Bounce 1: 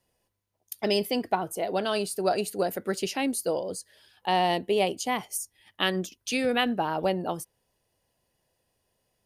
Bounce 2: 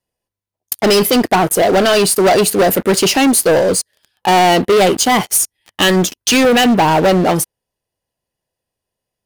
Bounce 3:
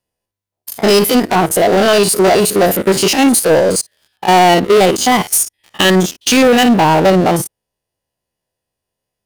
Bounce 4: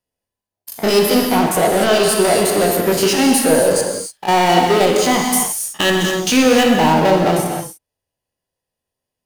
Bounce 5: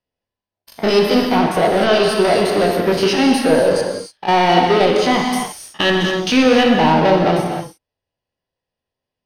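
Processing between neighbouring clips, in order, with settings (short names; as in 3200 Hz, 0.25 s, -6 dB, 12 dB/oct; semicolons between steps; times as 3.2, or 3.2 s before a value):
sample leveller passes 5; gain +4 dB
stepped spectrum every 50 ms; gain +2.5 dB
non-linear reverb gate 0.32 s flat, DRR 1 dB; gain -5.5 dB
polynomial smoothing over 15 samples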